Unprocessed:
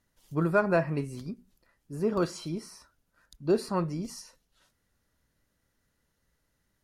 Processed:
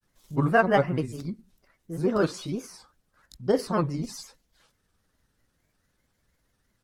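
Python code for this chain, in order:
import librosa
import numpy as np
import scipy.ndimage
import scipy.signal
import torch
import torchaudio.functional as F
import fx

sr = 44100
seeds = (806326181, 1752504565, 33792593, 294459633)

y = fx.granulator(x, sr, seeds[0], grain_ms=100.0, per_s=20.0, spray_ms=12.0, spread_st=3)
y = y * 10.0 ** (4.5 / 20.0)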